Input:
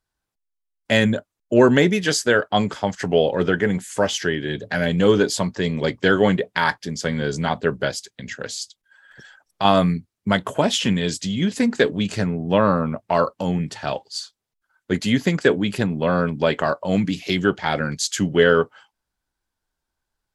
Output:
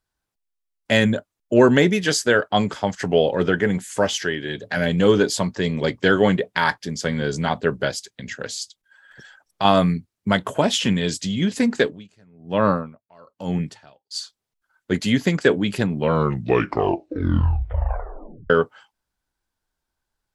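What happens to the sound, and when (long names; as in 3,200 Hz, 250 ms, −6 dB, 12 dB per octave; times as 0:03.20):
0:04.23–0:04.77: low-shelf EQ 370 Hz −5.5 dB
0:11.76–0:14.11: tremolo with a sine in dB 1.1 Hz, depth 32 dB
0:15.89: tape stop 2.61 s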